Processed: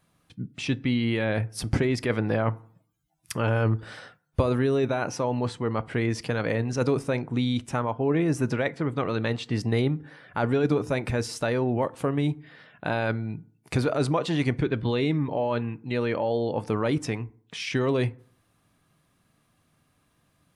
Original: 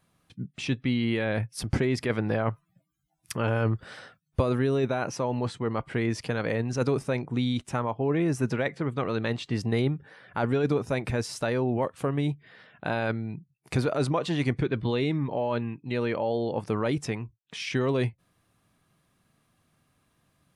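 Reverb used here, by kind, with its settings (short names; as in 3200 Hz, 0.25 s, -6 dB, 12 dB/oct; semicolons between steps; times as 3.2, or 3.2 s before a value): FDN reverb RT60 0.54 s, low-frequency decay 1.1×, high-frequency decay 0.5×, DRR 17 dB; gain +1.5 dB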